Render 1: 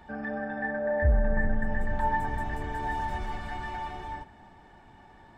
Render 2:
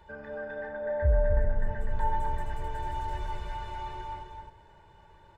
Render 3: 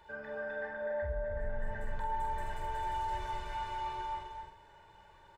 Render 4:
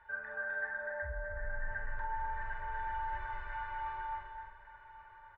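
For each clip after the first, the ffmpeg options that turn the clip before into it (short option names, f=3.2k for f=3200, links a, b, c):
-af "aecho=1:1:2:0.88,aecho=1:1:260:0.596,volume=-6dB"
-filter_complex "[0:a]lowshelf=f=410:g=-9.5,alimiter=level_in=6dB:limit=-24dB:level=0:latency=1:release=43,volume=-6dB,asplit=2[a][b];[b]adelay=46,volume=-5dB[c];[a][c]amix=inputs=2:normalize=0"
-af "lowpass=f=1.6k:t=q:w=2.9,equalizer=f=280:t=o:w=2:g=-14.5,aecho=1:1:1128:0.15,volume=-2dB"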